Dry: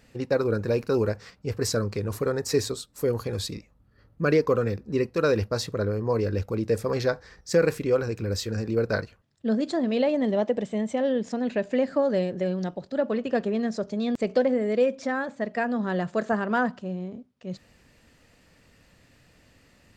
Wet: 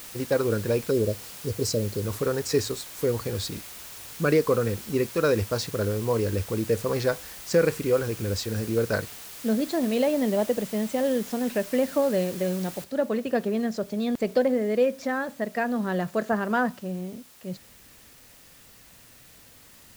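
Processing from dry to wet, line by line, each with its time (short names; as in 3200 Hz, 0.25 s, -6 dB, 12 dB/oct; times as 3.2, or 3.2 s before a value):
0.91–2.04 spectral delete 650–3900 Hz
12.84 noise floor step -42 dB -53 dB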